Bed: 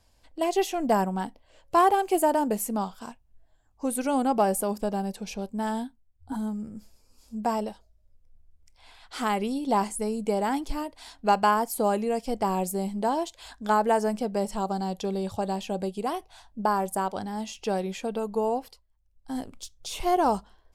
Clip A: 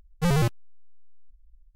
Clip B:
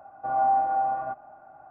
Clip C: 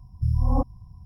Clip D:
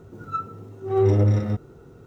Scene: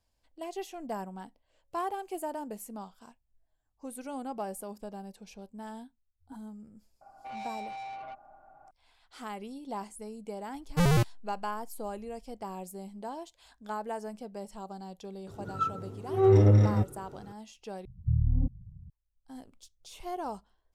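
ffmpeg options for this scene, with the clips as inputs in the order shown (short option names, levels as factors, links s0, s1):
-filter_complex "[0:a]volume=0.211[s0];[2:a]asoftclip=type=tanh:threshold=0.0251[s1];[4:a]aresample=32000,aresample=44100[s2];[3:a]lowpass=f=180:t=q:w=1.7[s3];[s0]asplit=2[s4][s5];[s4]atrim=end=17.854[s6];[s3]atrim=end=1.05,asetpts=PTS-STARTPTS,volume=0.531[s7];[s5]atrim=start=18.896[s8];[s1]atrim=end=1.7,asetpts=PTS-STARTPTS,volume=0.447,afade=t=in:d=0.004:c=hsin,afade=t=out:st=1.696:d=0.004:c=hsin,adelay=7010[s9];[1:a]atrim=end=1.75,asetpts=PTS-STARTPTS,volume=0.841,afade=t=in:d=0.004:c=hsin,afade=t=out:st=1.746:d=0.004:c=hsin,adelay=10550[s10];[s2]atrim=end=2.06,asetpts=PTS-STARTPTS,volume=0.841,afade=t=in:d=0.004:c=hsin,afade=t=out:st=2.056:d=0.004:c=hsin,adelay=15270[s11];[s6][s7]acrossfade=d=0.004:c1=hsin:c2=hsin[s12];[s12][s8]acrossfade=d=0.004:c1=hsin:c2=hsin[s13];[s13][s9][s10][s11]amix=inputs=4:normalize=0"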